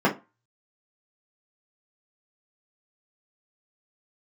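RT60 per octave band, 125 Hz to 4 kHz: 0.25, 0.25, 0.25, 0.30, 0.25, 0.20 seconds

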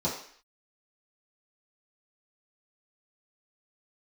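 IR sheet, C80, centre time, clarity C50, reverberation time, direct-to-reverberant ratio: 9.0 dB, 34 ms, 5.5 dB, 0.55 s, −8.5 dB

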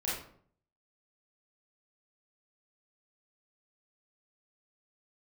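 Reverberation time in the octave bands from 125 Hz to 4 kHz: 0.75, 0.70, 0.60, 0.55, 0.45, 0.35 seconds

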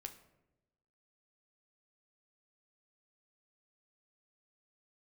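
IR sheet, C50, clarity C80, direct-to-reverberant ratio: 12.0 dB, 15.0 dB, 6.0 dB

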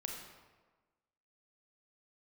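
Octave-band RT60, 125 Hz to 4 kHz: 1.2, 1.3, 1.4, 1.3, 1.1, 0.85 seconds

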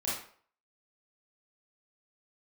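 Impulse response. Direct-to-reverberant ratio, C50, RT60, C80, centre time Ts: −8.0 dB, 0.5 dB, 0.50 s, 6.5 dB, 53 ms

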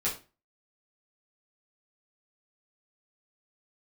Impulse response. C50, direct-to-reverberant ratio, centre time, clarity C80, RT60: 9.0 dB, −7.5 dB, 23 ms, 15.0 dB, 0.30 s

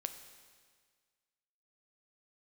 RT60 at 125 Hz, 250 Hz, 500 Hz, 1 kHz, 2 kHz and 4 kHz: 1.7, 1.7, 1.7, 1.7, 1.7, 1.7 seconds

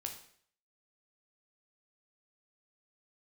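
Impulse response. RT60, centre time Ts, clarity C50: 0.60 s, 18 ms, 8.0 dB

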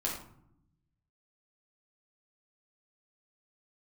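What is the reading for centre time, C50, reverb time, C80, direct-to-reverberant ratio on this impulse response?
37 ms, 4.0 dB, 0.70 s, 7.5 dB, −3.5 dB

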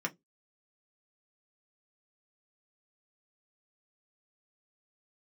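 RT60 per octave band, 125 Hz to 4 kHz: 0.25, 0.25, 0.20, 0.10, 0.10, 0.15 seconds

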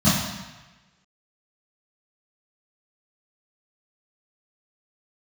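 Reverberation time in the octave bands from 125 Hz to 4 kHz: 1.2, 0.95, 1.1, 1.2, 1.3, 1.1 seconds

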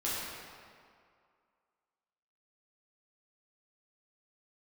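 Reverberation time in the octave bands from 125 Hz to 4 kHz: 1.8, 2.0, 2.1, 2.3, 1.8, 1.4 seconds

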